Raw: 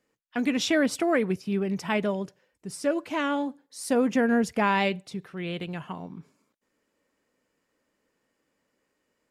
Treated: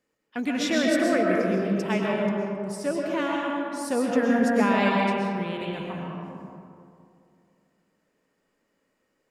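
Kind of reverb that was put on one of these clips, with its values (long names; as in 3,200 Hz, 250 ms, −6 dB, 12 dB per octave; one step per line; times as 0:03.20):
comb and all-pass reverb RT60 2.5 s, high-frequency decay 0.4×, pre-delay 85 ms, DRR −2.5 dB
level −2.5 dB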